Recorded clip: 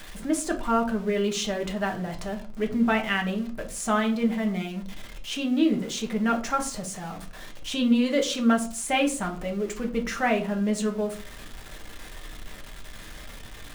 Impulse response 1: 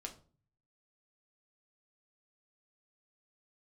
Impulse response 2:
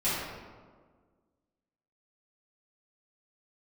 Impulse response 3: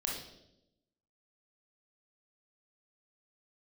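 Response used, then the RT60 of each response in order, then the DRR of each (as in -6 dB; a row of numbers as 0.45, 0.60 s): 1; 0.40, 1.6, 0.85 s; 2.0, -13.5, -2.0 dB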